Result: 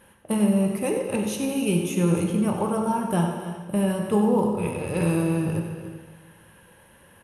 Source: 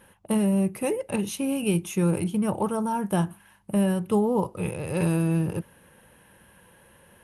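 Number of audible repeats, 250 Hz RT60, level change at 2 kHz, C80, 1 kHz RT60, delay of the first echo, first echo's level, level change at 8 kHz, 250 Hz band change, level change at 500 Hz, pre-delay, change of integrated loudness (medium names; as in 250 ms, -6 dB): 3, 1.5 s, +2.0 dB, 4.0 dB, 1.5 s, 94 ms, -9.5 dB, +1.5 dB, +2.0 dB, +2.0 dB, 7 ms, +1.5 dB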